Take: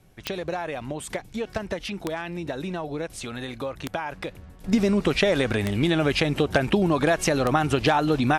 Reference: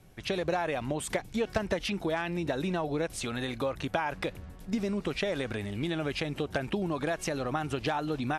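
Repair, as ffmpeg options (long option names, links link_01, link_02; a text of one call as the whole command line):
ffmpeg -i in.wav -af "adeclick=threshold=4,asetnsamples=nb_out_samples=441:pad=0,asendcmd='4.64 volume volume -10dB',volume=0dB" out.wav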